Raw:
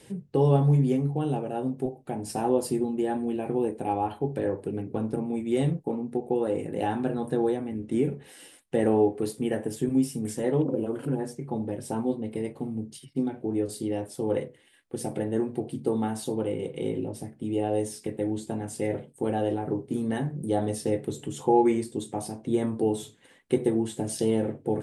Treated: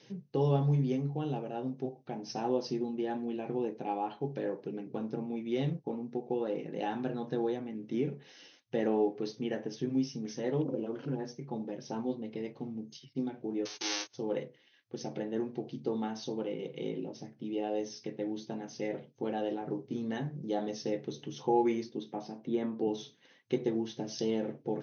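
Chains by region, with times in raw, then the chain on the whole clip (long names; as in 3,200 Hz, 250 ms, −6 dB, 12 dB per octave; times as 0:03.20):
0:13.65–0:14.13: spectral envelope flattened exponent 0.1 + noise gate −40 dBFS, range −24 dB + low shelf with overshoot 260 Hz −7.5 dB, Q 3
0:21.89–0:22.88: high-pass filter 150 Hz 24 dB per octave + bass and treble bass +2 dB, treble −11 dB
whole clip: brick-wall band-pass 110–6,400 Hz; high-shelf EQ 4,000 Hz +11.5 dB; level −7 dB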